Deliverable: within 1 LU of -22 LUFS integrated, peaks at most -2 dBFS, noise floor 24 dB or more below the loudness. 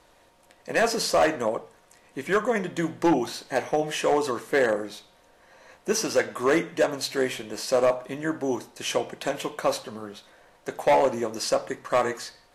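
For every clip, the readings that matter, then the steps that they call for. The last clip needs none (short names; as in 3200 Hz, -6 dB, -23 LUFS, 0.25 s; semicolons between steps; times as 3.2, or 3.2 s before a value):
clipped 0.9%; flat tops at -14.5 dBFS; loudness -25.5 LUFS; peak -14.5 dBFS; loudness target -22.0 LUFS
-> clip repair -14.5 dBFS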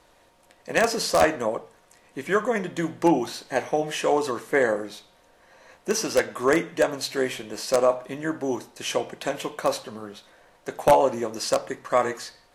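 clipped 0.0%; loudness -25.0 LUFS; peak -5.5 dBFS; loudness target -22.0 LUFS
-> gain +3 dB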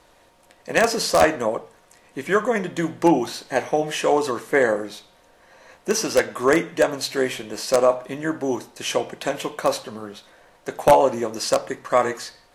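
loudness -22.0 LUFS; peak -2.5 dBFS; noise floor -56 dBFS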